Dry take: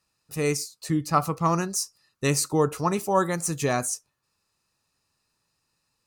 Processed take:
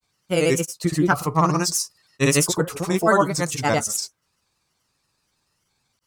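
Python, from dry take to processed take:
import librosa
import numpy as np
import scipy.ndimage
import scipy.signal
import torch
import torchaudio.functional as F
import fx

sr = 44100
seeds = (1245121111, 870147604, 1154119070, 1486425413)

y = fx.granulator(x, sr, seeds[0], grain_ms=100.0, per_s=21.0, spray_ms=100.0, spread_st=3)
y = y * 10.0 ** (6.0 / 20.0)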